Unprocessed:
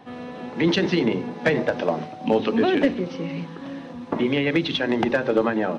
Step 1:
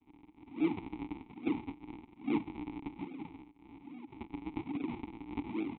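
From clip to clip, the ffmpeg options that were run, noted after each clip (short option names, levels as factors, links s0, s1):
-filter_complex "[0:a]aresample=8000,acrusher=samples=40:mix=1:aa=0.000001:lfo=1:lforange=64:lforate=1.2,aresample=44100,asplit=3[s0][s1][s2];[s0]bandpass=f=300:t=q:w=8,volume=1[s3];[s1]bandpass=f=870:t=q:w=8,volume=0.501[s4];[s2]bandpass=f=2240:t=q:w=8,volume=0.355[s5];[s3][s4][s5]amix=inputs=3:normalize=0,volume=0.794"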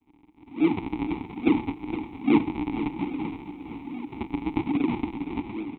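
-filter_complex "[0:a]dynaudnorm=f=110:g=11:m=4.22,asplit=2[s0][s1];[s1]aecho=0:1:465|930|1395|1860|2325:0.282|0.144|0.0733|0.0374|0.0191[s2];[s0][s2]amix=inputs=2:normalize=0"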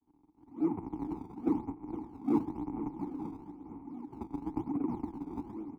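-filter_complex "[0:a]lowpass=f=1300:w=0.5412,lowpass=f=1300:w=1.3066,acrossover=split=120|490[s0][s1][s2];[s0]acrusher=samples=21:mix=1:aa=0.000001:lfo=1:lforange=33.6:lforate=0.99[s3];[s3][s1][s2]amix=inputs=3:normalize=0,volume=0.376"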